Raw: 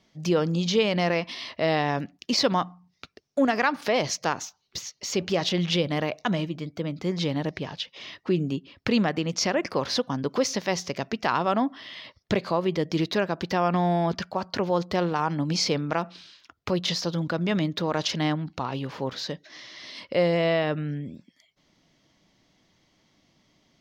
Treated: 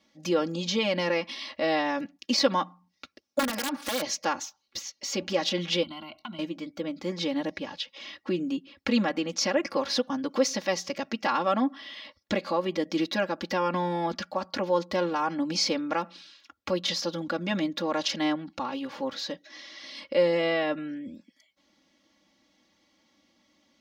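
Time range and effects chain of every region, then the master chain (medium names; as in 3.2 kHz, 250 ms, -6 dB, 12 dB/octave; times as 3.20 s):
3.39–4.02 s: bass shelf 180 Hz +3 dB + compression 4:1, threshold -24 dBFS + integer overflow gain 21 dB
5.83–6.39 s: rippled EQ curve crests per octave 1.9, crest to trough 12 dB + compression 12:1, threshold -28 dBFS + static phaser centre 1.8 kHz, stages 6
whole clip: high-pass 160 Hz 6 dB/octave; comb 3.6 ms, depth 97%; trim -4 dB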